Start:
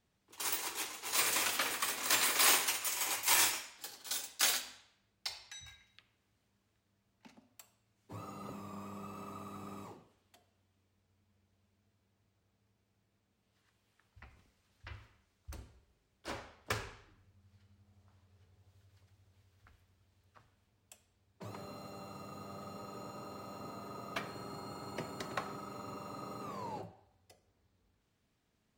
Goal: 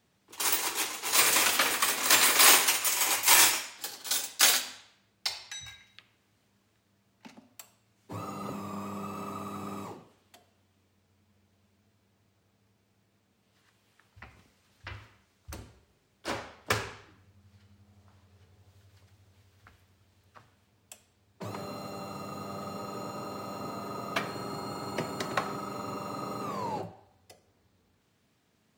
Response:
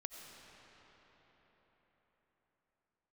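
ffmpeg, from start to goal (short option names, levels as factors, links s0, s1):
-af "highpass=92,volume=2.66"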